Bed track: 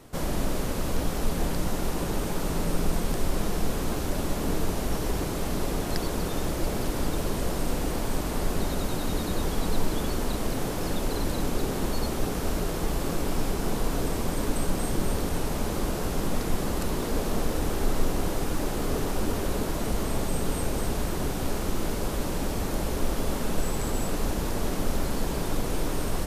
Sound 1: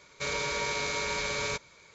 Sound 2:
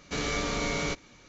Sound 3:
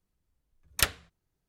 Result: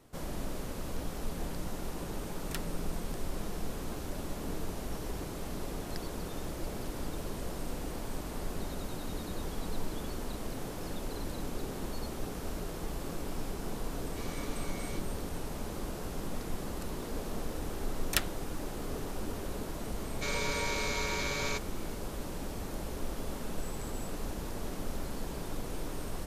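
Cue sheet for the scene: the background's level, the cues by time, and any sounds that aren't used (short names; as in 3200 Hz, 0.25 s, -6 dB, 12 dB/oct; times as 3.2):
bed track -10 dB
1.72 add 3 -16.5 dB
14.05 add 2 -15.5 dB
17.34 add 3 -5 dB
20.01 add 1 -3 dB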